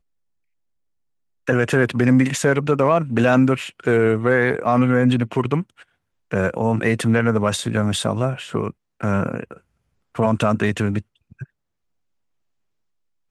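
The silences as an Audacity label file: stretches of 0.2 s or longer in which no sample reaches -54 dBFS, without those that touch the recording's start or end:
5.890000	6.310000	silence
8.730000	9.010000	silence
9.610000	10.150000	silence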